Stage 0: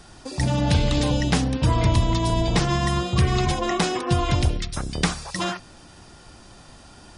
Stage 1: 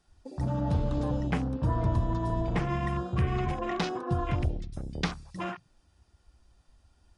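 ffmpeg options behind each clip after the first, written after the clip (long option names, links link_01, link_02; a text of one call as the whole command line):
ffmpeg -i in.wav -af "afwtdn=0.0316,volume=-7.5dB" out.wav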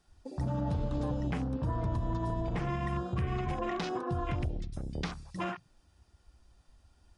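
ffmpeg -i in.wav -af "alimiter=limit=-24dB:level=0:latency=1:release=142" out.wav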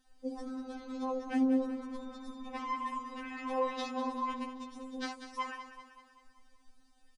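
ffmpeg -i in.wav -filter_complex "[0:a]asplit=2[link_01][link_02];[link_02]aecho=0:1:193|386|579|772|965|1158:0.299|0.158|0.0839|0.0444|0.0236|0.0125[link_03];[link_01][link_03]amix=inputs=2:normalize=0,afftfilt=real='re*3.46*eq(mod(b,12),0)':imag='im*3.46*eq(mod(b,12),0)':win_size=2048:overlap=0.75,volume=2dB" out.wav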